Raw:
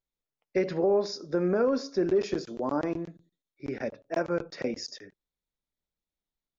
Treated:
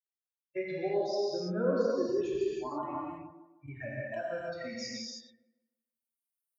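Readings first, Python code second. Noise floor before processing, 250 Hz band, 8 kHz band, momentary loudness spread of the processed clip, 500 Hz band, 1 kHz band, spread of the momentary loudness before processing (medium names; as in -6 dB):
under -85 dBFS, -6.5 dB, no reading, 14 LU, -4.0 dB, -3.0 dB, 13 LU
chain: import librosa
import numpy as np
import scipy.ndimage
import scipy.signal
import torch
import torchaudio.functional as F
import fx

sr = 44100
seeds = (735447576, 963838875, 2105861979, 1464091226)

y = fx.bin_expand(x, sr, power=3.0)
y = fx.recorder_agc(y, sr, target_db=-26.5, rise_db_per_s=9.2, max_gain_db=30)
y = scipy.signal.sosfilt(scipy.signal.butter(2, 63.0, 'highpass', fs=sr, output='sos'), y)
y = fx.echo_wet_bandpass(y, sr, ms=155, feedback_pct=35, hz=540.0, wet_db=-7.0)
y = fx.rev_gated(y, sr, seeds[0], gate_ms=360, shape='flat', drr_db=-6.0)
y = y * librosa.db_to_amplitude(-6.0)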